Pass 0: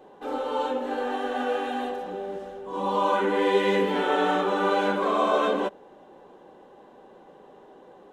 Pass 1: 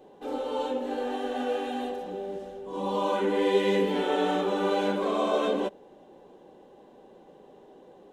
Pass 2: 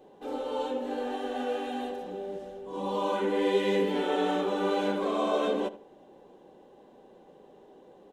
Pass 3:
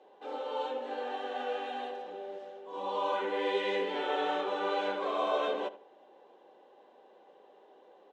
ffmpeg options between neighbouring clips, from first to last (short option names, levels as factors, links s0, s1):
-af "equalizer=f=1300:w=0.96:g=-8.5"
-filter_complex "[0:a]asplit=2[s0][s1];[s1]adelay=78,lowpass=f=2400:p=1,volume=0.178,asplit=2[s2][s3];[s3]adelay=78,lowpass=f=2400:p=1,volume=0.32,asplit=2[s4][s5];[s5]adelay=78,lowpass=f=2400:p=1,volume=0.32[s6];[s0][s2][s4][s6]amix=inputs=4:normalize=0,volume=0.794"
-af "highpass=550,lowpass=4200"